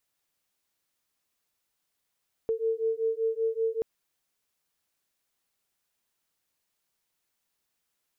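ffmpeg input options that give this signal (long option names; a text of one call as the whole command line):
ffmpeg -f lavfi -i "aevalsrc='0.0376*(sin(2*PI*447*t)+sin(2*PI*452.2*t))':duration=1.33:sample_rate=44100" out.wav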